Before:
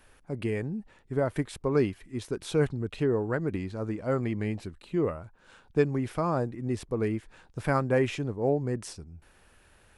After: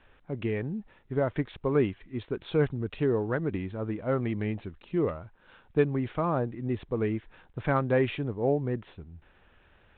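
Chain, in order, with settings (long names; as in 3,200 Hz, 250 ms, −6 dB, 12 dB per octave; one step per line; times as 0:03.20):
de-essing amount 80%
G.726 40 kbit/s 8,000 Hz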